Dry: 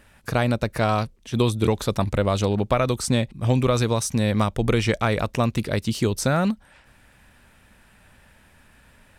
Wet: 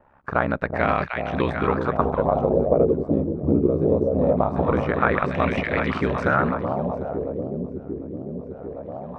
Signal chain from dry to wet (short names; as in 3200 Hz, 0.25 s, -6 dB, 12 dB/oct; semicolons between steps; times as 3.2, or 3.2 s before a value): low shelf 140 Hz -9 dB; ring modulator 34 Hz; echo with dull and thin repeats by turns 0.374 s, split 800 Hz, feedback 82%, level -4 dB; LFO low-pass sine 0.22 Hz 350–2100 Hz; gain +2 dB